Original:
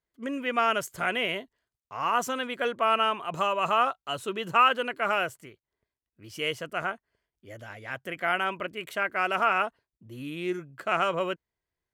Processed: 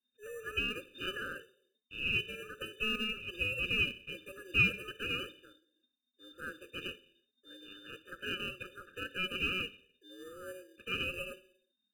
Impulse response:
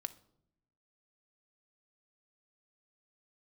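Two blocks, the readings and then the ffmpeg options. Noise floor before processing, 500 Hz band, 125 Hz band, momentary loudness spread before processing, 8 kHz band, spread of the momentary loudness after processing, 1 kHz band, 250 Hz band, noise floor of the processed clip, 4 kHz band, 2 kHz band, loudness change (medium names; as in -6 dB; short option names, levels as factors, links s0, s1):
under -85 dBFS, -14.5 dB, -1.5 dB, 14 LU, -11.0 dB, 18 LU, -24.0 dB, -8.5 dB, -84 dBFS, -3.0 dB, -4.5 dB, -7.5 dB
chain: -filter_complex "[0:a]aemphasis=mode=reproduction:type=bsi[s0];[1:a]atrim=start_sample=2205,afade=t=out:st=0.44:d=0.01,atrim=end_sample=19845[s1];[s0][s1]afir=irnorm=-1:irlink=0,lowpass=f=3100:t=q:w=0.5098,lowpass=f=3100:t=q:w=0.6013,lowpass=f=3100:t=q:w=0.9,lowpass=f=3100:t=q:w=2.563,afreqshift=-3700,asplit=2[s2][s3];[s3]acrusher=samples=34:mix=1:aa=0.000001,volume=0.335[s4];[s2][s4]amix=inputs=2:normalize=0,afftfilt=real='re*eq(mod(floor(b*sr/1024/600),2),0)':imag='im*eq(mod(floor(b*sr/1024/600),2),0)':win_size=1024:overlap=0.75,volume=0.596"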